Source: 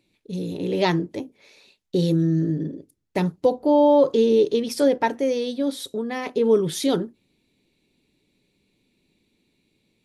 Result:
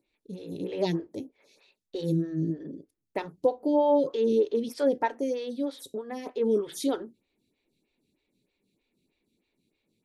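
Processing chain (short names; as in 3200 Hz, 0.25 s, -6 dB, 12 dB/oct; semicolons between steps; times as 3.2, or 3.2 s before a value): photocell phaser 3.2 Hz; gain -4.5 dB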